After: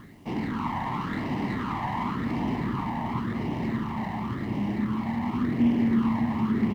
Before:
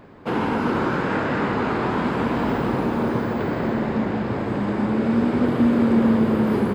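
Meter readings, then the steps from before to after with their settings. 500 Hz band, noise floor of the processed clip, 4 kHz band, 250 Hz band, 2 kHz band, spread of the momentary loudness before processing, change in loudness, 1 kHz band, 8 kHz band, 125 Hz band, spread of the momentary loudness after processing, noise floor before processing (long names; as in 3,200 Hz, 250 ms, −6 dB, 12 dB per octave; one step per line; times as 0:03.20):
−14.5 dB, −34 dBFS, −6.0 dB, −6.0 dB, −8.5 dB, 7 LU, −6.5 dB, −5.5 dB, can't be measured, −4.0 dB, 7 LU, −27 dBFS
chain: variable-slope delta modulation 16 kbit/s
low-shelf EQ 150 Hz −7 dB
comb filter 1 ms, depth 67%
reversed playback
upward compression, threshold −25 dBFS
reversed playback
all-pass phaser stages 8, 0.92 Hz, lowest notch 390–1,400 Hz
high-frequency loss of the air 150 metres
bit reduction 10 bits
on a send: single-tap delay 584 ms −9.5 dB
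on the sum: windowed peak hold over 5 samples
level −3.5 dB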